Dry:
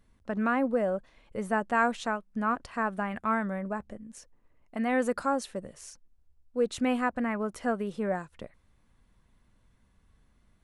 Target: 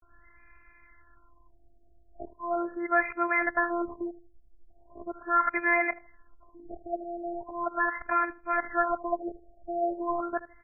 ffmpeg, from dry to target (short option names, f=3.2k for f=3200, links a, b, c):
-filter_complex "[0:a]areverse,equalizer=f=280:w=6.7:g=-8,asplit=2[a][b];[b]acompressor=threshold=-42dB:ratio=6,volume=-2dB[c];[a][c]amix=inputs=2:normalize=0,asoftclip=type=tanh:threshold=-16dB,aresample=16000,aresample=44100,acrossover=split=1400[d][e];[e]aeval=exprs='0.0841*sin(PI/2*5.01*val(0)/0.0841)':c=same[f];[d][f]amix=inputs=2:normalize=0,asplit=2[g][h];[h]adelay=79,lowpass=f=1k:p=1,volume=-16dB,asplit=2[i][j];[j]adelay=79,lowpass=f=1k:p=1,volume=0.3,asplit=2[k][l];[l]adelay=79,lowpass=f=1k:p=1,volume=0.3[m];[g][i][k][m]amix=inputs=4:normalize=0,afftfilt=real='hypot(re,im)*cos(PI*b)':imag='0':win_size=512:overlap=0.75,afftfilt=real='re*lt(b*sr/1024,740*pow(2700/740,0.5+0.5*sin(2*PI*0.39*pts/sr)))':imag='im*lt(b*sr/1024,740*pow(2700/740,0.5+0.5*sin(2*PI*0.39*pts/sr)))':win_size=1024:overlap=0.75,volume=3.5dB"